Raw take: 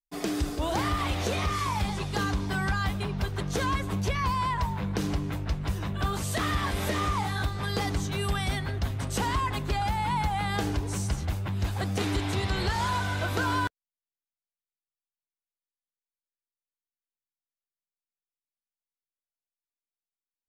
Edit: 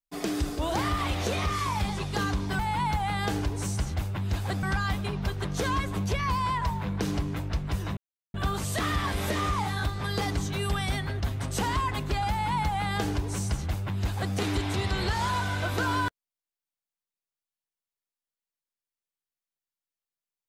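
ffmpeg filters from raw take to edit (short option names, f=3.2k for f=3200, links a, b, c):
-filter_complex "[0:a]asplit=4[a][b][c][d];[a]atrim=end=2.592[e];[b]atrim=start=9.898:end=11.942[f];[c]atrim=start=2.588:end=5.93,asetpts=PTS-STARTPTS,afade=t=out:st=3.338:d=0.004:c=hsin,apad=pad_dur=0.37[g];[d]atrim=start=5.93,asetpts=PTS-STARTPTS,afade=t=in:d=0.004:c=hsin[h];[e][f]acrossfade=d=0.004:c1=hsin:c2=hsin[i];[g][h]concat=n=2:v=0:a=1[j];[i][j]acrossfade=d=0.004:c1=hsin:c2=hsin"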